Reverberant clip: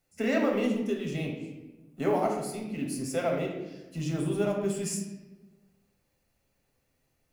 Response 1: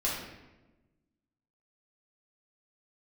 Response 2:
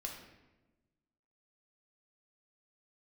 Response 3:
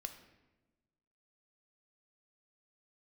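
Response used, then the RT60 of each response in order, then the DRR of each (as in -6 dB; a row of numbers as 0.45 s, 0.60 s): 2; 1.1 s, 1.1 s, 1.1 s; -6.5 dB, 0.0 dB, 7.0 dB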